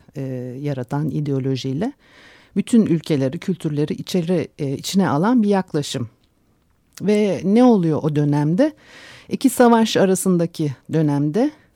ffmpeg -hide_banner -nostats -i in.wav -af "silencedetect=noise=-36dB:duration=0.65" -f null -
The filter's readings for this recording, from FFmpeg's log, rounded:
silence_start: 6.07
silence_end: 6.95 | silence_duration: 0.88